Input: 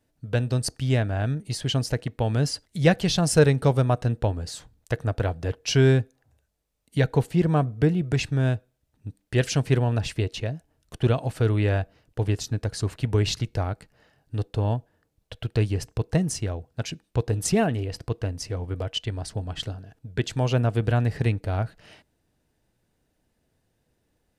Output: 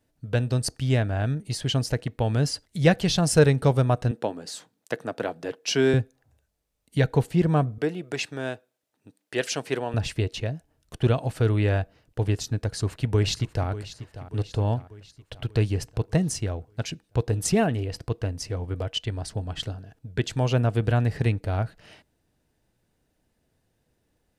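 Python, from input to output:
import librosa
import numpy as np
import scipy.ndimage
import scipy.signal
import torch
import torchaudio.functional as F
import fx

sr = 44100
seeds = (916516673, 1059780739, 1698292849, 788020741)

y = fx.highpass(x, sr, hz=190.0, slope=24, at=(4.11, 5.94))
y = fx.highpass(y, sr, hz=350.0, slope=12, at=(7.78, 9.94))
y = fx.echo_throw(y, sr, start_s=12.6, length_s=1.09, ms=590, feedback_pct=55, wet_db=-14.0)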